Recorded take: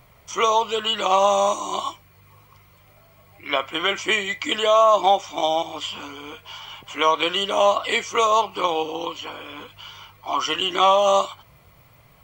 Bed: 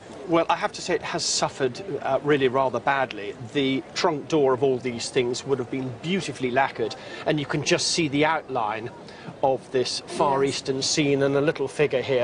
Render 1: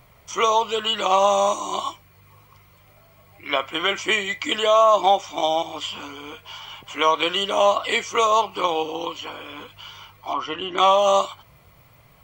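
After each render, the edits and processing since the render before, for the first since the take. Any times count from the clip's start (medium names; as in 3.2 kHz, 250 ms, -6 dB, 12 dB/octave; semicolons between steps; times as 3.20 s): 10.33–10.78 s: tape spacing loss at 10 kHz 28 dB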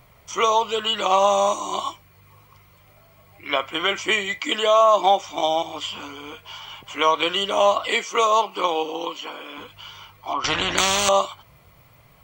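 4.39–5.21 s: steep high-pass 150 Hz; 7.88–9.58 s: high-pass 180 Hz 24 dB/octave; 10.44–11.09 s: spectrum-flattening compressor 4:1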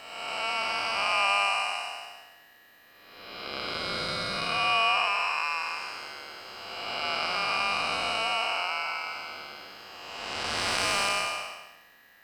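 spectral blur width 557 ms; ring modulator 1.8 kHz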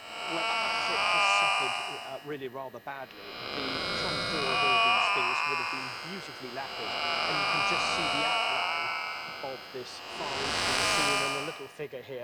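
add bed -17 dB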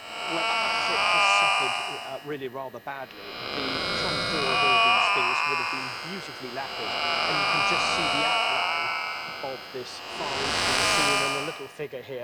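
trim +4 dB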